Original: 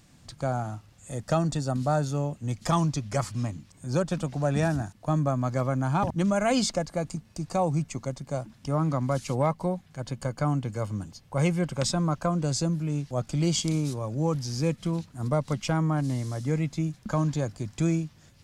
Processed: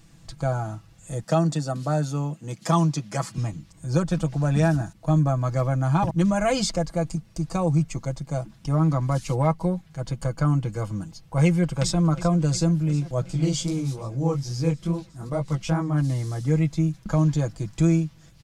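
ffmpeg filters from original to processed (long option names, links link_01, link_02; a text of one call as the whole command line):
ffmpeg -i in.wav -filter_complex "[0:a]asettb=1/sr,asplit=3[link_01][link_02][link_03];[link_01]atrim=end=1.234[link_04];[link_02]atrim=start=1.23:end=3.38,asetpts=PTS-STARTPTS,afade=type=in:duration=0.004:curve=qsin,afade=type=out:start_time=2.146:duration=0.004:curve=qsin,highpass=frequency=150:width=0.5412,highpass=frequency=150:width=1.3066[link_05];[link_03]atrim=start=3.376[link_06];[link_04][link_05]acrossfade=duration=0.004:curve1=hsin:curve2=qsin[link_07];[link_07][link_06]acrossfade=duration=0.004:curve1=qsin:curve2=hsin,asplit=2[link_08][link_09];[link_09]afade=type=in:start_time=11.45:duration=0.01,afade=type=out:start_time=11.99:duration=0.01,aecho=0:1:360|720|1080|1440|1800|2160|2520|2880|3240|3600|3960|4320:0.16788|0.134304|0.107443|0.0859548|0.0687638|0.0550111|0.0440088|0.0352071|0.0281657|0.0225325|0.018026|0.0144208[link_10];[link_08][link_10]amix=inputs=2:normalize=0,asplit=3[link_11][link_12][link_13];[link_11]afade=type=out:start_time=13.22:duration=0.02[link_14];[link_12]flanger=delay=15:depth=7.1:speed=2.4,afade=type=in:start_time=13.22:duration=0.02,afade=type=out:start_time=15.96:duration=0.02[link_15];[link_13]afade=type=in:start_time=15.96:duration=0.02[link_16];[link_14][link_15][link_16]amix=inputs=3:normalize=0,lowshelf=frequency=74:gain=11,aecho=1:1:6.1:0.65" out.wav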